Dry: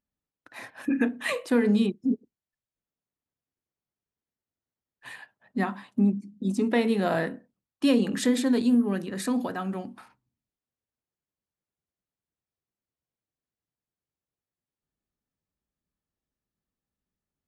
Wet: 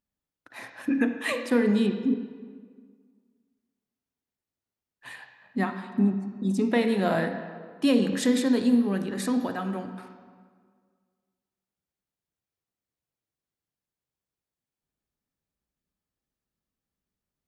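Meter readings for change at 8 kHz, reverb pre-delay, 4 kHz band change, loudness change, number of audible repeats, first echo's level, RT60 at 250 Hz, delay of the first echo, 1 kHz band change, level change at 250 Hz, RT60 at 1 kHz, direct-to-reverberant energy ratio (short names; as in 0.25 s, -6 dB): 0.0 dB, 38 ms, +0.5 dB, +0.5 dB, none, none, 1.8 s, none, +0.5 dB, +0.5 dB, 1.7 s, 7.5 dB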